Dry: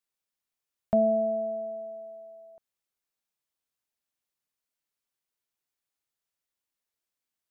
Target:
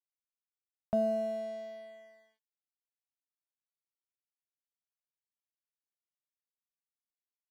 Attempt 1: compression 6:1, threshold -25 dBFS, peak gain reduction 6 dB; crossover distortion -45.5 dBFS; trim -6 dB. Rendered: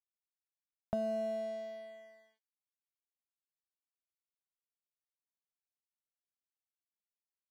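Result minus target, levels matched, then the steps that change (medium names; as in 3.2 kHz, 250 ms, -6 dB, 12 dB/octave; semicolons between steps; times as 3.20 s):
compression: peak gain reduction +6 dB
remove: compression 6:1, threshold -25 dBFS, peak gain reduction 6 dB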